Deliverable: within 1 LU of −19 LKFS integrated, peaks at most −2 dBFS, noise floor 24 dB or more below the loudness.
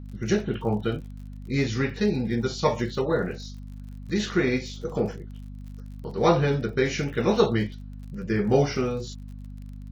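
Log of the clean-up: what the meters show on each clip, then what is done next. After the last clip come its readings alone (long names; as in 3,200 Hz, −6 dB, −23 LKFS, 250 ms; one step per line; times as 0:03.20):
crackle rate 50 per second; mains hum 50 Hz; hum harmonics up to 250 Hz; level of the hum −36 dBFS; integrated loudness −26.0 LKFS; sample peak −5.5 dBFS; target loudness −19.0 LKFS
→ click removal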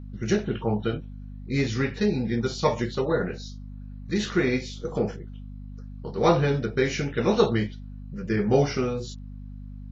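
crackle rate 0 per second; mains hum 50 Hz; hum harmonics up to 250 Hz; level of the hum −36 dBFS
→ hum removal 50 Hz, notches 5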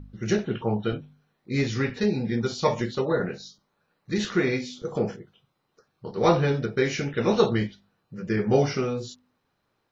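mains hum none found; integrated loudness −26.0 LKFS; sample peak −6.0 dBFS; target loudness −19.0 LKFS
→ level +7 dB
brickwall limiter −2 dBFS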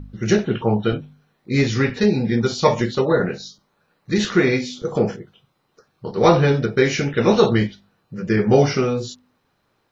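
integrated loudness −19.5 LKFS; sample peak −2.0 dBFS; background noise floor −68 dBFS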